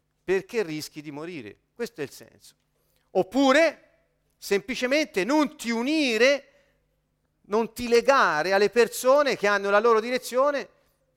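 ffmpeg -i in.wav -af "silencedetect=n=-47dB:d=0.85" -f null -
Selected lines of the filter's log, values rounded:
silence_start: 6.43
silence_end: 7.48 | silence_duration: 1.05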